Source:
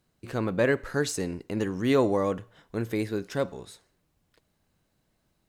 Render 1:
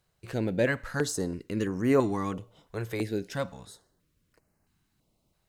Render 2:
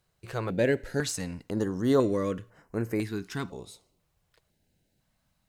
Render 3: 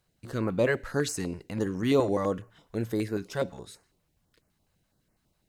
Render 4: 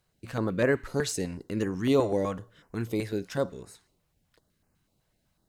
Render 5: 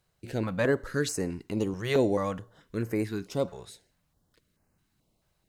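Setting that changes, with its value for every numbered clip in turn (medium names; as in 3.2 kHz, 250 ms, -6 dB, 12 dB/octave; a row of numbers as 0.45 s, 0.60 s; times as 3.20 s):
step-sequenced notch, rate: 3 Hz, 2 Hz, 12 Hz, 8 Hz, 4.6 Hz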